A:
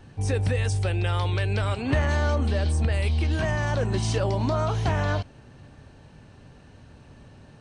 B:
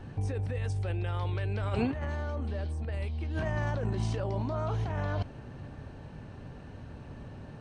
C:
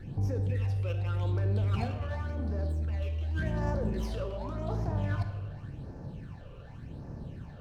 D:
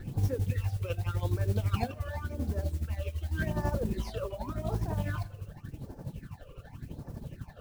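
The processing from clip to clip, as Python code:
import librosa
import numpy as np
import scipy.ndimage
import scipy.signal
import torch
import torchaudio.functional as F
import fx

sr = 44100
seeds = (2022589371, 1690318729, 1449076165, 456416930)

y1 = fx.high_shelf(x, sr, hz=3000.0, db=-11.5)
y1 = fx.over_compress(y1, sr, threshold_db=-30.0, ratio=-1.0)
y1 = y1 * 10.0 ** (-1.5 / 20.0)
y2 = fx.phaser_stages(y1, sr, stages=8, low_hz=230.0, high_hz=3100.0, hz=0.88, feedback_pct=40)
y2 = fx.room_shoebox(y2, sr, seeds[0], volume_m3=880.0, walls='mixed', distance_m=0.79)
y2 = fx.running_max(y2, sr, window=3)
y3 = y2 * (1.0 - 0.5 / 2.0 + 0.5 / 2.0 * np.cos(2.0 * np.pi * 12.0 * (np.arange(len(y2)) / sr)))
y3 = fx.dereverb_blind(y3, sr, rt60_s=1.2)
y3 = fx.mod_noise(y3, sr, seeds[1], snr_db=25)
y3 = y3 * 10.0 ** (4.5 / 20.0)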